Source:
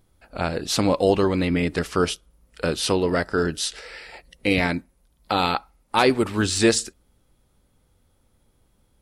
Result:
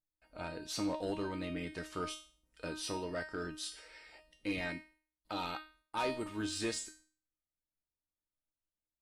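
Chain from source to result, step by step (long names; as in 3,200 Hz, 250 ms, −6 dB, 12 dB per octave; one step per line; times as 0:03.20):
noise gate with hold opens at −49 dBFS
tuned comb filter 310 Hz, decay 0.41 s, harmonics all, mix 90%
soft clipping −25.5 dBFS, distortion −19 dB
level −1 dB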